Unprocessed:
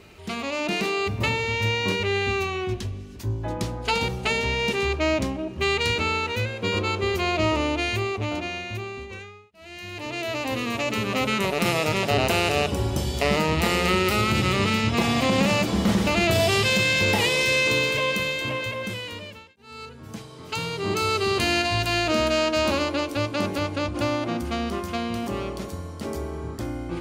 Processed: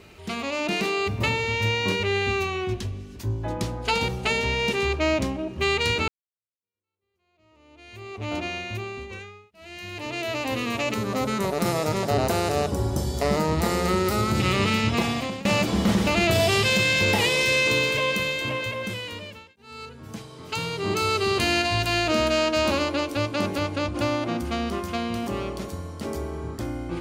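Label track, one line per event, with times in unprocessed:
6.080000	8.340000	fade in exponential
10.940000	14.400000	bell 2700 Hz -13 dB
14.920000	15.450000	fade out, to -21 dB

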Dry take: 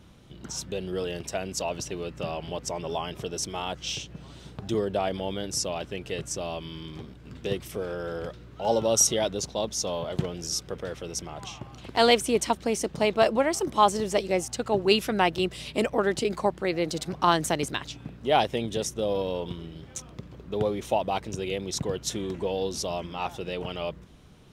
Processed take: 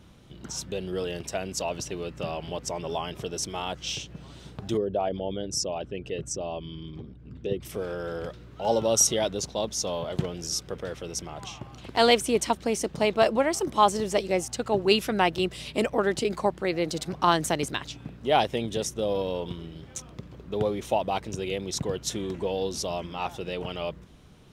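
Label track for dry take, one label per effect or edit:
4.770000	7.650000	formant sharpening exponent 1.5

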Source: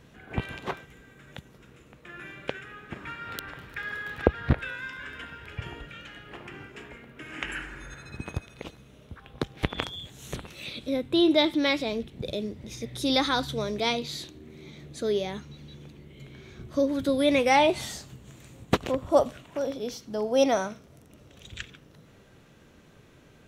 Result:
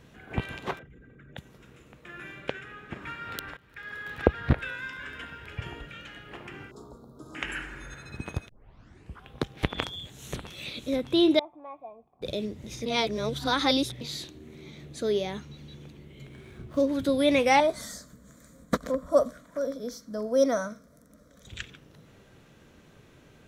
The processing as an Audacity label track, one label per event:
0.790000	1.370000	formant sharpening exponent 2
2.400000	3.020000	high shelf 8400 Hz -6 dB
3.570000	4.230000	fade in, from -20 dB
6.710000	7.350000	elliptic band-stop 1200–4100 Hz
8.490000	8.490000	tape start 0.77 s
9.860000	10.650000	echo throw 0.6 s, feedback 70%, level -9.5 dB
11.390000	12.220000	vocal tract filter a
12.860000	14.010000	reverse
16.270000	16.890000	median filter over 9 samples
17.600000	21.470000	fixed phaser centre 550 Hz, stages 8

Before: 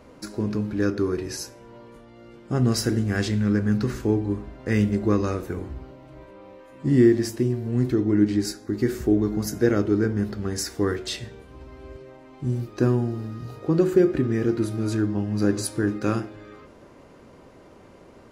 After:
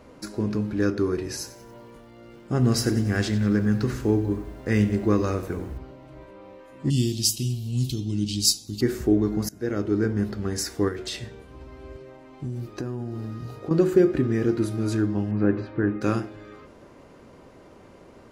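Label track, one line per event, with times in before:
1.220000	5.780000	lo-fi delay 93 ms, feedback 55%, word length 8-bit, level -14.5 dB
6.900000	8.810000	EQ curve 170 Hz 0 dB, 380 Hz -16 dB, 880 Hz -13 dB, 1800 Hz -27 dB, 2900 Hz +13 dB
9.490000	10.290000	fade in equal-power, from -21.5 dB
10.880000	13.710000	compressor, threshold -27 dBFS
15.310000	16.010000	LPF 2600 Hz 24 dB/oct

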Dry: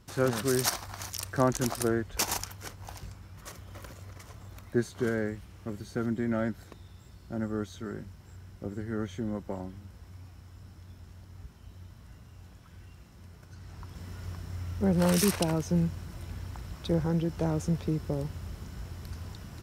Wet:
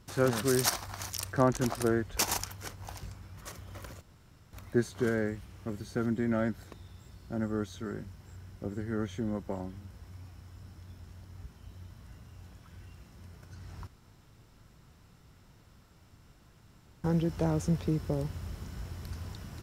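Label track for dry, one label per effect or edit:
1.320000	1.860000	high shelf 4200 Hz -7 dB
4.010000	4.530000	room tone
13.870000	17.040000	room tone

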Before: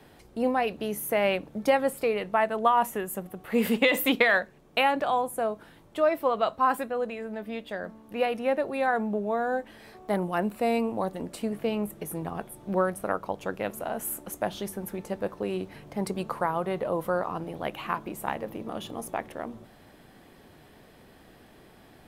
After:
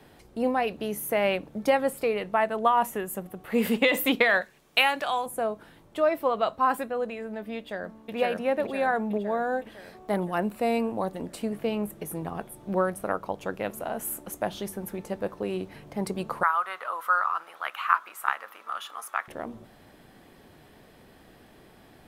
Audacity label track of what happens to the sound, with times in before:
4.410000	5.260000	tilt shelf lows -8 dB, about 1100 Hz
7.570000	8.150000	echo throw 0.51 s, feedback 60%, level 0 dB
16.430000	19.280000	resonant high-pass 1300 Hz, resonance Q 5.2

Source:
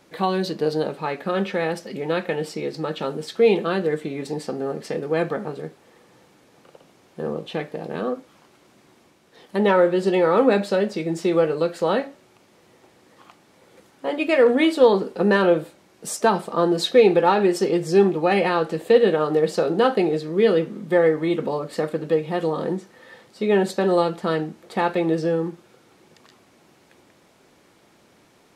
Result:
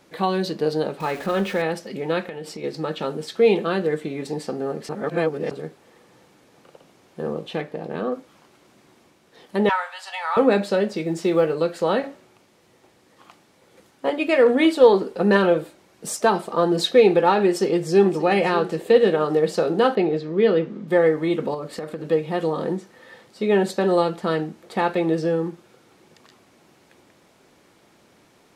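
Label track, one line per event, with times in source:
1.000000	1.620000	zero-crossing step of -34.5 dBFS
2.230000	2.640000	compressor, threshold -30 dBFS
4.890000	5.510000	reverse
7.610000	8.120000	high shelf 4500 Hz -7 dB
9.690000	10.370000	steep high-pass 750 Hz 48 dB/oct
10.900000	11.530000	short-mantissa float mantissa of 6-bit
12.030000	14.100000	three-band expander depth 40%
14.650000	16.870000	phaser 1.4 Hz, delay 3.3 ms, feedback 28%
17.460000	18.120000	echo throw 0.58 s, feedback 40%, level -14.5 dB
18.670000	19.270000	short-mantissa float mantissa of 8-bit
19.950000	20.880000	air absorption 120 m
21.540000	22.090000	compressor, threshold -26 dBFS

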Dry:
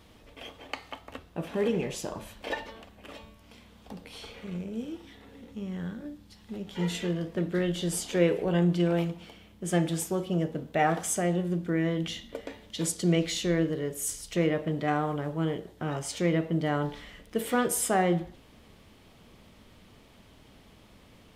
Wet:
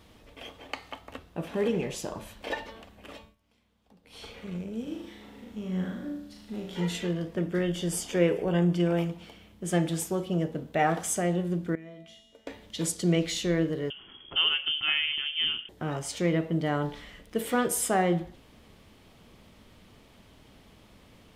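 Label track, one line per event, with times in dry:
3.150000	4.240000	dip -17 dB, fades 0.21 s
4.830000	6.800000	flutter echo walls apart 6.5 m, dies away in 0.71 s
7.360000	9.110000	notch 4000 Hz, Q 5.5
11.750000	12.470000	resonator 220 Hz, decay 1.1 s, mix 90%
13.900000	15.690000	inverted band carrier 3300 Hz

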